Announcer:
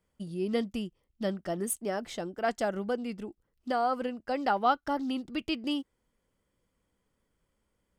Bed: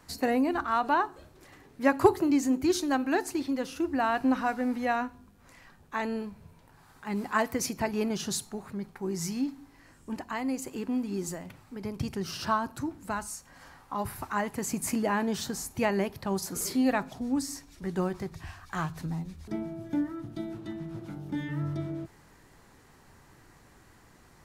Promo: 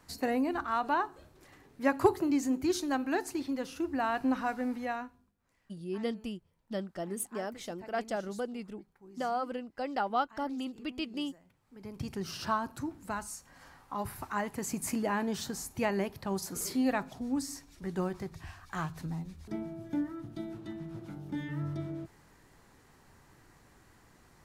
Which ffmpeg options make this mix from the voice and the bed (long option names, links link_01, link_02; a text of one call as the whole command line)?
ffmpeg -i stem1.wav -i stem2.wav -filter_complex "[0:a]adelay=5500,volume=-4.5dB[link_01];[1:a]volume=13.5dB,afade=type=out:start_time=4.65:duration=0.7:silence=0.141254,afade=type=in:start_time=11.6:duration=0.57:silence=0.133352[link_02];[link_01][link_02]amix=inputs=2:normalize=0" out.wav